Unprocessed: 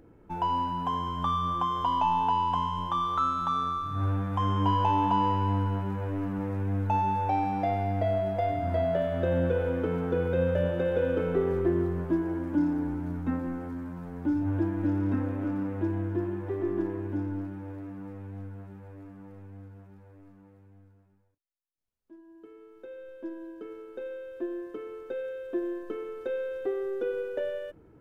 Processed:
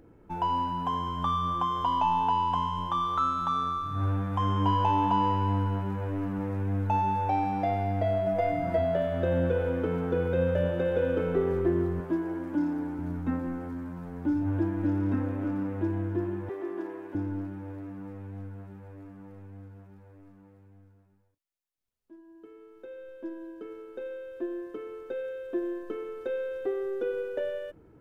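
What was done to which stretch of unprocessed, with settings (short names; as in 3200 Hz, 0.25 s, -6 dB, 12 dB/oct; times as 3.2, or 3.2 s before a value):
8.26–8.78 comb 6.2 ms, depth 70%
12–12.99 low shelf 140 Hz -11.5 dB
16.49–17.15 HPF 440 Hz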